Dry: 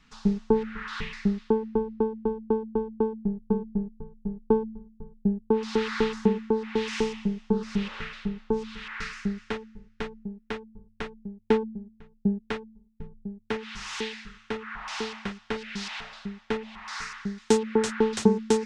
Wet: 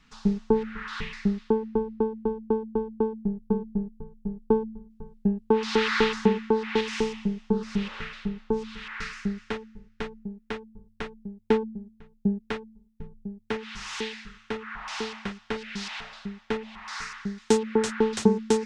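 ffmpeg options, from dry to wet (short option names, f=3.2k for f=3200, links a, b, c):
-filter_complex "[0:a]asettb=1/sr,asplit=3[a][b][c];[a]atrim=end=4.904[d];[b]atrim=start=4.9:end=6.81,asetpts=PTS-STARTPTS,afade=t=in:d=0.004:c=qsin,afade=t=out:st=1.906:d=0.004:c=qsin,equalizer=f=2.5k:w=0.33:g=8[e];[c]atrim=start=6.806[f];[d][e]acrossfade=d=0.004:c1=hsin:c2=qsin[g];[g][f]acrossfade=d=0.004:c1=qsin:c2=hsin"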